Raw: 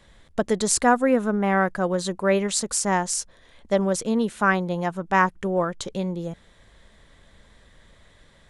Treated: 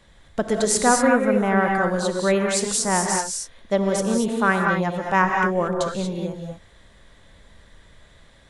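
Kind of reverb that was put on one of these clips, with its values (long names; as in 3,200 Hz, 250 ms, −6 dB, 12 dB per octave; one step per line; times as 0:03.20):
reverb whose tail is shaped and stops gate 260 ms rising, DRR 1 dB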